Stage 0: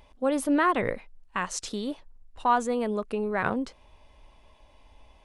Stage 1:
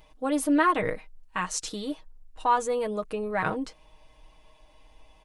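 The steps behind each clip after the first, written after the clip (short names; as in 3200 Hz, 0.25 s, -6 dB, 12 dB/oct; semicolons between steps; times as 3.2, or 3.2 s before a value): high shelf 6200 Hz +5 dB; comb 6.4 ms, depth 68%; gain -2 dB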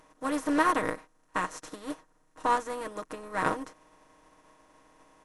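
per-bin compression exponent 0.4; upward expander 2.5:1, over -34 dBFS; gain -3 dB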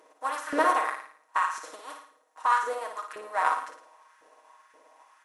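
LFO high-pass saw up 1.9 Hz 410–1700 Hz; flutter echo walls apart 9.6 m, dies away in 0.53 s; gain -1.5 dB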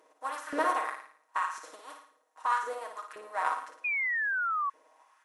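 painted sound fall, 3.84–4.7, 1100–2500 Hz -25 dBFS; gain -5 dB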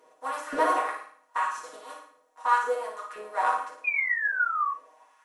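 shoebox room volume 140 m³, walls furnished, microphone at 1.8 m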